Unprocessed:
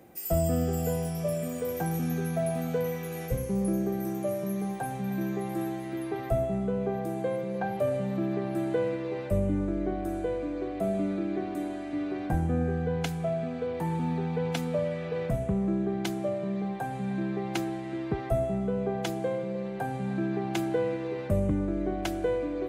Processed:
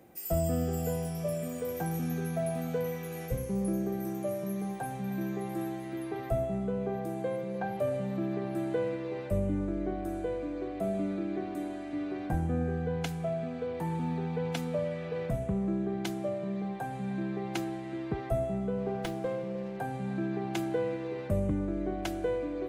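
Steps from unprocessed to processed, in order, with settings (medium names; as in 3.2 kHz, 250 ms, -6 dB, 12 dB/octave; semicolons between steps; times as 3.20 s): de-hum 402.7 Hz, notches 39; 18.78–19.77 s: sliding maximum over 5 samples; trim -3 dB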